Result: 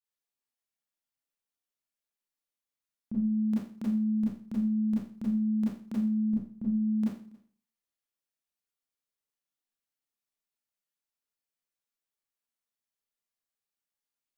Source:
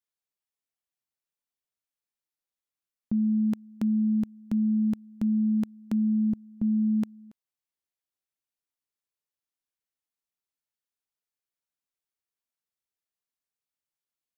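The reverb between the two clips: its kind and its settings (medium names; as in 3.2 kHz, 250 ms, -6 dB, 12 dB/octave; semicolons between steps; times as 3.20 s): Schroeder reverb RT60 0.44 s, combs from 27 ms, DRR -7.5 dB; trim -9 dB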